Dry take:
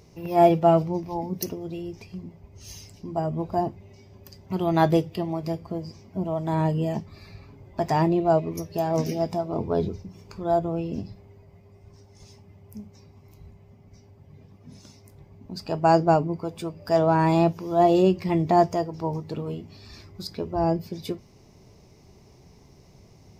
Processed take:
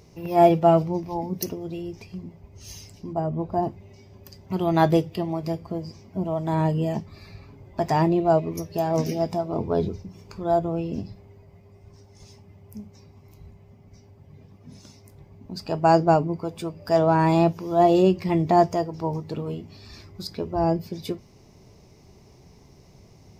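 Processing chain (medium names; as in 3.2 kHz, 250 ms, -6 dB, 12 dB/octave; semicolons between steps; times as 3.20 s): 3.13–3.63 s: treble shelf 2.3 kHz -9.5 dB; trim +1 dB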